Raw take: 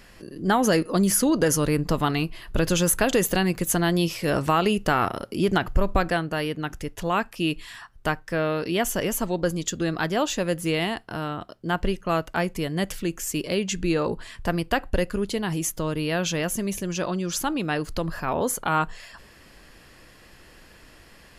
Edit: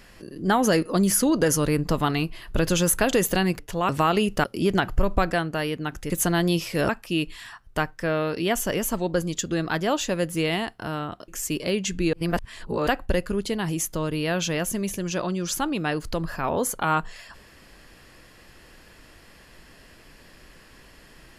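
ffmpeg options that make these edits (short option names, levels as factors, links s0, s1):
-filter_complex "[0:a]asplit=9[s0][s1][s2][s3][s4][s5][s6][s7][s8];[s0]atrim=end=3.592[s9];[s1]atrim=start=6.878:end=7.182[s10];[s2]atrim=start=4.378:end=4.932[s11];[s3]atrim=start=5.218:end=6.882[s12];[s4]atrim=start=3.588:end=4.382[s13];[s5]atrim=start=7.178:end=11.572[s14];[s6]atrim=start=13.118:end=13.972[s15];[s7]atrim=start=13.968:end=14.712,asetpts=PTS-STARTPTS,areverse[s16];[s8]atrim=start=14.708[s17];[s9][s10]acrossfade=d=0.004:c1=hsin:c2=hsin[s18];[s18][s11]acrossfade=d=0.004:c1=hsin:c2=hsin[s19];[s19][s12]acrossfade=d=0.004:c1=hsin:c2=hsin[s20];[s20][s13]acrossfade=d=0.004:c1=hsin:c2=hsin[s21];[s21][s14]acrossfade=d=0.004:c1=hsin:c2=hsin[s22];[s22][s15]acrossfade=d=0.004:c1=hsin:c2=hsin[s23];[s23][s16]acrossfade=d=0.004:c1=hsin:c2=hsin[s24];[s24][s17]acrossfade=d=0.004:c1=hsin:c2=hsin"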